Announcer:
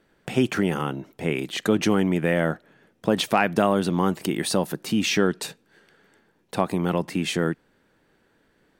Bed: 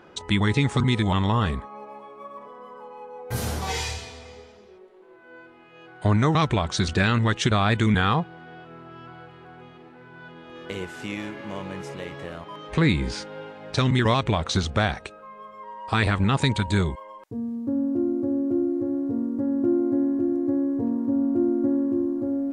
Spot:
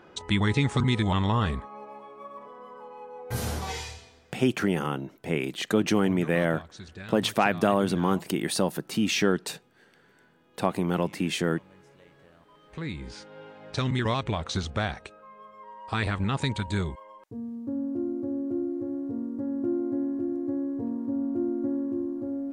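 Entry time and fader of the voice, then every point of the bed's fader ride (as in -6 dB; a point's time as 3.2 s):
4.05 s, -2.5 dB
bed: 3.57 s -2.5 dB
4.4 s -20.5 dB
12.38 s -20.5 dB
13.55 s -6 dB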